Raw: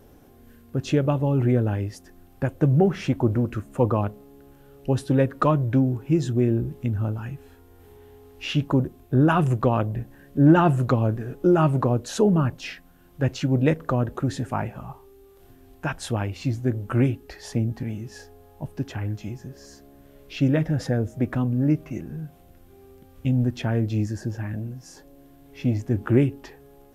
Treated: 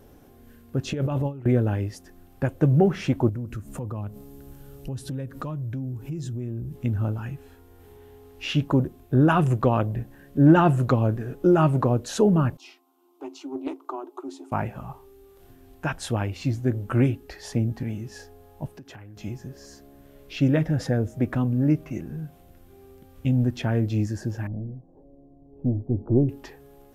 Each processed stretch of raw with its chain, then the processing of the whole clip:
0:00.93–0:01.46: noise gate with hold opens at −14 dBFS, closes at −20 dBFS + compressor whose output falls as the input rises −25 dBFS
0:03.29–0:06.76: bass and treble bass +9 dB, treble +8 dB + downward compressor 4 to 1, threshold −32 dBFS
0:12.57–0:14.52: Chebyshev high-pass with heavy ripple 260 Hz, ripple 9 dB + phaser with its sweep stopped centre 340 Hz, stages 8 + highs frequency-modulated by the lows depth 0.17 ms
0:18.67–0:19.17: low-shelf EQ 90 Hz −10 dB + downward compressor 8 to 1, threshold −40 dBFS
0:24.47–0:26.29: gain on one half-wave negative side −3 dB + inverse Chebyshev low-pass filter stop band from 1,900 Hz, stop band 50 dB
whole clip: no processing

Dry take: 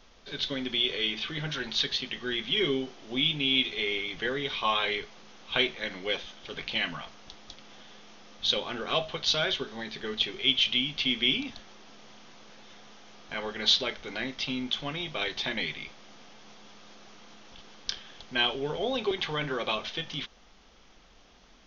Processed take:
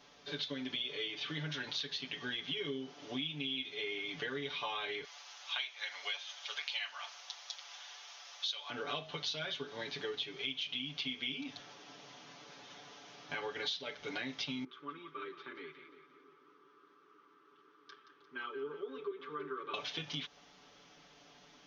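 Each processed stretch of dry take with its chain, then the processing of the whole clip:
0:05.04–0:08.70: high-pass filter 710 Hz 24 dB per octave + high-shelf EQ 4,400 Hz +10 dB
0:14.64–0:19.74: pair of resonant band-passes 680 Hz, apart 1.7 octaves + echo with a time of its own for lows and highs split 590 Hz, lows 315 ms, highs 175 ms, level −11 dB
whole clip: high-pass filter 110 Hz 12 dB per octave; comb filter 6.9 ms, depth 90%; downward compressor 6 to 1, threshold −33 dBFS; level −3.5 dB

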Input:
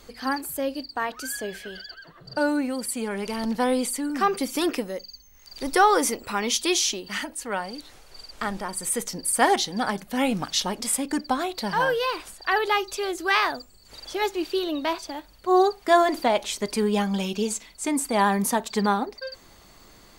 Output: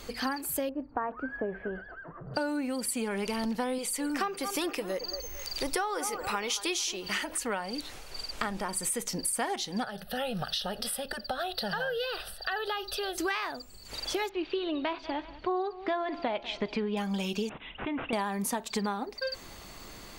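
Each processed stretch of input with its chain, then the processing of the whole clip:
0:00.69–0:02.34: low-pass filter 1,400 Hz 24 dB per octave + upward compression, threshold −46 dBFS
0:03.78–0:07.38: parametric band 240 Hz −10.5 dB 0.42 octaves + upward compression, threshold −34 dBFS + delay with a band-pass on its return 224 ms, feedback 32%, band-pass 830 Hz, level −12 dB
0:09.84–0:13.18: downward compressor 2.5 to 1, threshold −29 dBFS + phaser with its sweep stopped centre 1,500 Hz, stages 8
0:14.29–0:16.97: low-pass filter 3,700 Hz 24 dB per octave + repeating echo 192 ms, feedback 43%, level −22 dB
0:17.49–0:18.13: low-pass filter 8,300 Hz 24 dB per octave + downward compressor 2 to 1, threshold −43 dBFS + bad sample-rate conversion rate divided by 6×, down none, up filtered
whole clip: parametric band 2,600 Hz +3 dB 0.44 octaves; downward compressor 10 to 1, threshold −33 dBFS; level +4.5 dB

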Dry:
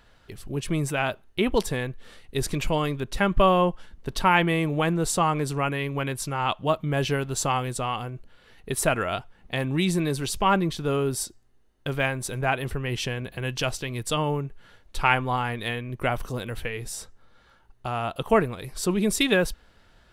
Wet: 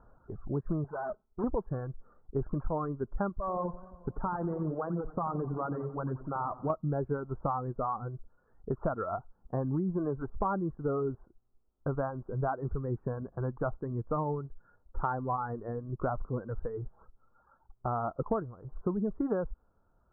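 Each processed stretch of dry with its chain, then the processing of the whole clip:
0:00.84–0:01.44: comb filter 4.7 ms, depth 53% + tube saturation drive 30 dB, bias 0.5
0:03.29–0:06.70: downward compressor 5 to 1, threshold −24 dBFS + tube saturation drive 18 dB, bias 0.4 + feedback echo with a swinging delay time 89 ms, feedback 73%, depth 78 cents, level −10 dB
whole clip: Butterworth low-pass 1,400 Hz 72 dB per octave; reverb reduction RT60 1.5 s; downward compressor 10 to 1, threshold −27 dBFS

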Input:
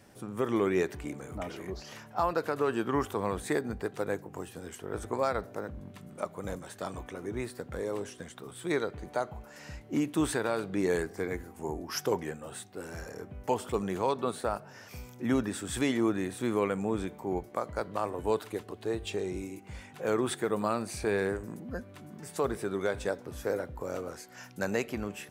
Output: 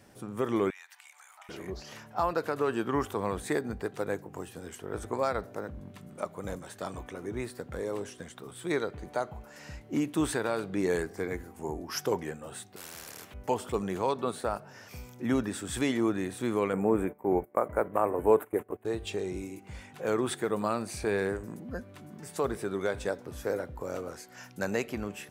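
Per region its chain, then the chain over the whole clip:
0:00.70–0:01.49: elliptic high-pass filter 830 Hz, stop band 80 dB + tilt shelving filter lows −5 dB, about 1,100 Hz + downward compressor 3 to 1, threshold −51 dBFS
0:12.76–0:13.34: high-pass filter 110 Hz + every bin compressed towards the loudest bin 4 to 1
0:16.73–0:18.85: noise gate −44 dBFS, range −17 dB + drawn EQ curve 120 Hz 0 dB, 440 Hz +7 dB, 2,300 Hz +2 dB, 4,700 Hz −26 dB, 7,600 Hz −3 dB, 13,000 Hz +10 dB
whole clip: no processing

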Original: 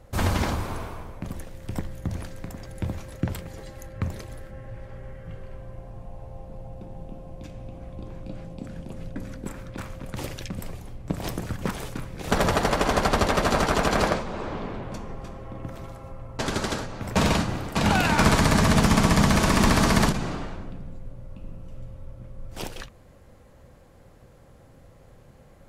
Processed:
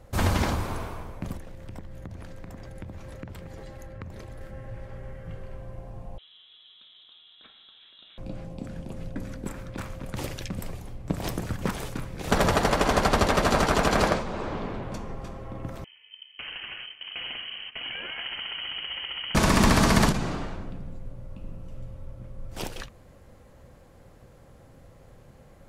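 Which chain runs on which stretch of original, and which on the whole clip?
0:01.37–0:04.41: high-shelf EQ 4,500 Hz −8.5 dB + downward compressor 5 to 1, threshold −36 dBFS
0:06.18–0:08.18: high-pass filter 1,300 Hz 6 dB per octave + voice inversion scrambler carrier 3,900 Hz
0:15.84–0:19.35: noise gate −34 dBFS, range −16 dB + downward compressor 3 to 1, threshold −38 dBFS + voice inversion scrambler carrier 3,100 Hz
whole clip: no processing

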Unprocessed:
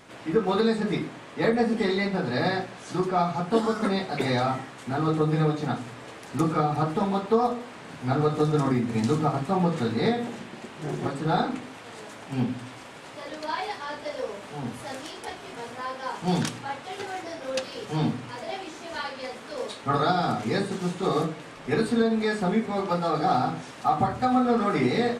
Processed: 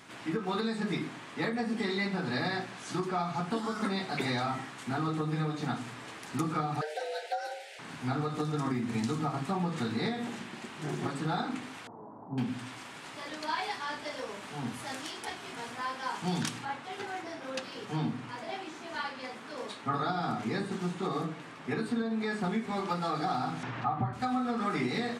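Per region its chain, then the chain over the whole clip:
0:06.81–0:07.79: Butterworth band-reject 800 Hz, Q 0.75 + frequency shifter +300 Hz
0:11.87–0:12.38: elliptic low-pass filter 980 Hz, stop band 70 dB + one half of a high-frequency compander encoder only
0:16.65–0:22.44: high-pass filter 87 Hz + high-shelf EQ 2,700 Hz −7.5 dB
0:23.63–0:24.13: low-pass filter 2,100 Hz + parametric band 120 Hz +14.5 dB 0.33 octaves + upward compression, threshold −25 dBFS
whole clip: downward compressor 4 to 1, threshold −25 dBFS; high-pass filter 150 Hz 6 dB per octave; parametric band 530 Hz −8.5 dB 0.89 octaves

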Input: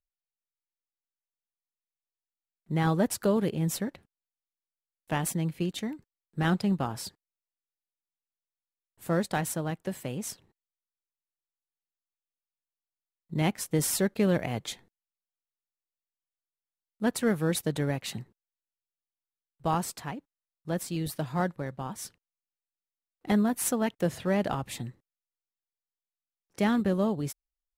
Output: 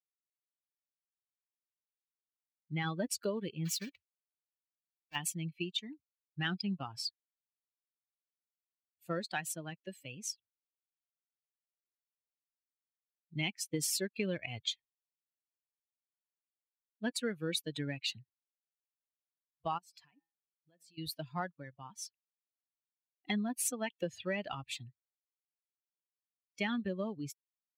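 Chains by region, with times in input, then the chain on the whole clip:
0:03.65–0:05.16: one scale factor per block 3 bits + volume swells 133 ms
0:19.78–0:20.98: hum removal 164.7 Hz, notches 37 + downward compressor 12 to 1, threshold −42 dBFS
whole clip: spectral dynamics exaggerated over time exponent 2; meter weighting curve D; downward compressor 3 to 1, threshold −33 dBFS

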